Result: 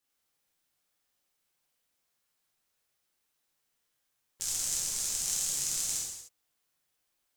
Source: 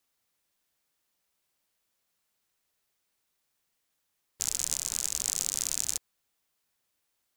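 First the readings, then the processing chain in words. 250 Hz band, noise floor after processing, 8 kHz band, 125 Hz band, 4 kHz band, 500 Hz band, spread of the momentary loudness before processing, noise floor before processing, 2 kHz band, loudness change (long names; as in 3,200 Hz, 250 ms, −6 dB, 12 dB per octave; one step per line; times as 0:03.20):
−1.0 dB, −80 dBFS, −0.5 dB, 0.0 dB, −0.5 dB, −1.0 dB, 4 LU, −79 dBFS, −0.5 dB, −0.5 dB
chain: reverb whose tail is shaped and stops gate 330 ms falling, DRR −6 dB
level −7.5 dB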